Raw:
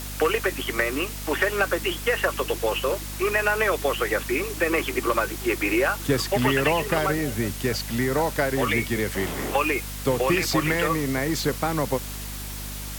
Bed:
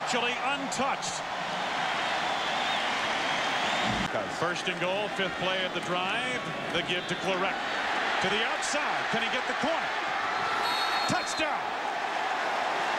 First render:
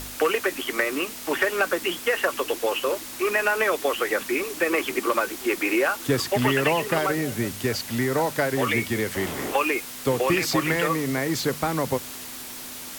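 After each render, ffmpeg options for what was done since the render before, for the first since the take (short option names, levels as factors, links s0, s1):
-af "bandreject=f=50:t=h:w=4,bandreject=f=100:t=h:w=4,bandreject=f=150:t=h:w=4,bandreject=f=200:t=h:w=4"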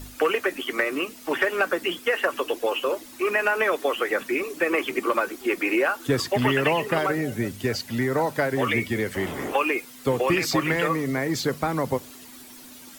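-af "afftdn=nr=11:nf=-38"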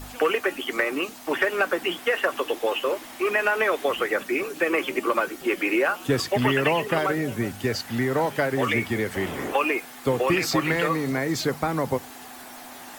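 -filter_complex "[1:a]volume=0.168[s0];[0:a][s0]amix=inputs=2:normalize=0"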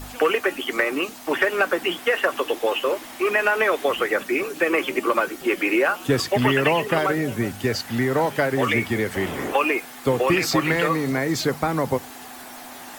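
-af "volume=1.33"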